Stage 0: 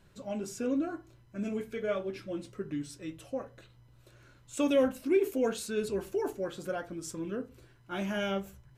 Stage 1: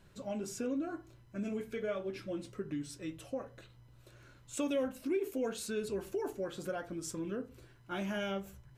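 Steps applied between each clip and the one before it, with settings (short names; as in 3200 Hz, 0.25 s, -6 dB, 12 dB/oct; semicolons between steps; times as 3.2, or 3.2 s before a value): compressor 2:1, threshold -36 dBFS, peak gain reduction 8.5 dB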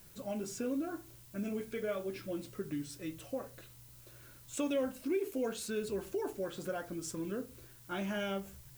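added noise blue -59 dBFS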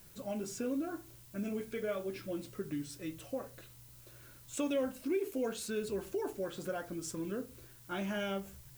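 nothing audible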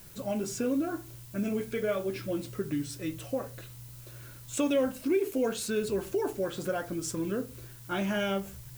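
bell 120 Hz +6 dB 0.2 oct; gain +6.5 dB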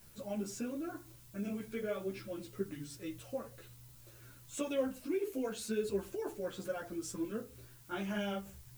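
ensemble effect; gain -5 dB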